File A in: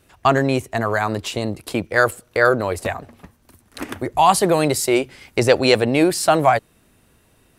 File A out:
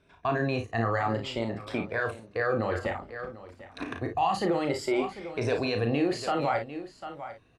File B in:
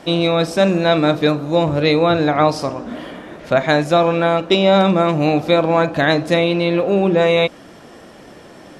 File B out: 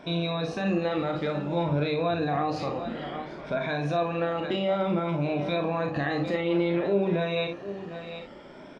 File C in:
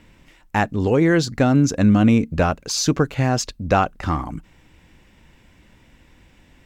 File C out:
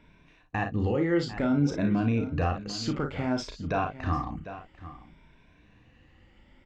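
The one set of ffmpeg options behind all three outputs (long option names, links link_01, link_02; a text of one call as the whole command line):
ffmpeg -i in.wav -filter_complex "[0:a]afftfilt=real='re*pow(10,10/40*sin(2*PI*(1.6*log(max(b,1)*sr/1024/100)/log(2)-(0.57)*(pts-256)/sr)))':imag='im*pow(10,10/40*sin(2*PI*(1.6*log(max(b,1)*sr/1024/100)/log(2)-(0.57)*(pts-256)/sr)))':win_size=1024:overlap=0.75,asplit=2[link_01][link_02];[link_02]aecho=0:1:746:0.133[link_03];[link_01][link_03]amix=inputs=2:normalize=0,alimiter=limit=-11dB:level=0:latency=1:release=49,lowpass=3700,asplit=2[link_04][link_05];[link_05]aecho=0:1:35|55:0.473|0.335[link_06];[link_04][link_06]amix=inputs=2:normalize=0,volume=-8dB" out.wav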